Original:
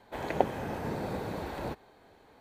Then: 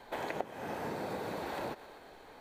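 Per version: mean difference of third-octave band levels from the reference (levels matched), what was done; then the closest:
6.0 dB: high-pass filter 330 Hz 6 dB per octave
feedback echo with a high-pass in the loop 120 ms, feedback 55%, level −18 dB
background noise brown −74 dBFS
downward compressor 5 to 1, threshold −42 dBFS, peak gain reduction 20.5 dB
level +6.5 dB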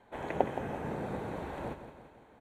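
4.0 dB: low-pass filter 8,800 Hz 12 dB per octave
parametric band 4,800 Hz −14 dB 0.57 octaves
mains-hum notches 50/100 Hz
on a send: repeating echo 170 ms, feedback 54%, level −10.5 dB
on the sum: level −2.5 dB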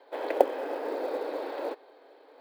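8.5 dB: Chebyshev band-pass filter 280–5,100 Hz, order 5
parametric band 530 Hz +9 dB 0.66 octaves
floating-point word with a short mantissa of 4 bits
reversed playback
upward compression, threshold −51 dBFS
reversed playback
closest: second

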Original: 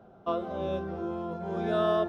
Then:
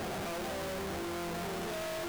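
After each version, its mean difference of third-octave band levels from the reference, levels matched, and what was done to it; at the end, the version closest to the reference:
15.5 dB: sign of each sample alone
level −6.5 dB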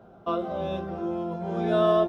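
1.5 dB: double-tracking delay 17 ms −6 dB
level +2.5 dB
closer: second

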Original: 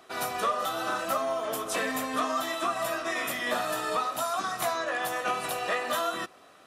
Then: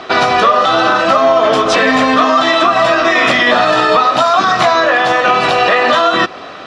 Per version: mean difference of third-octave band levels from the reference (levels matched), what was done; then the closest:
5.0 dB: low-pass filter 5,000 Hz 24 dB per octave
downward compressor 2 to 1, threshold −34 dBFS, peak gain reduction 6.5 dB
boost into a limiter +26.5 dB
level −1 dB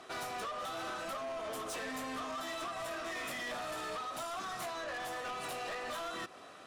3.5 dB: low-pass filter 9,500 Hz 12 dB per octave
downward compressor 4 to 1, threshold −35 dBFS, peak gain reduction 10.5 dB
soft clipping −39.5 dBFS, distortion −9 dB
level +2.5 dB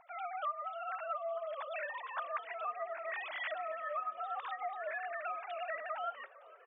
18.5 dB: three sine waves on the formant tracks
downward compressor 5 to 1, threshold −33 dBFS, peak gain reduction 16 dB
on a send: echo with shifted repeats 456 ms, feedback 59%, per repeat −70 Hz, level −20 dB
on the sum: level −3.5 dB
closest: second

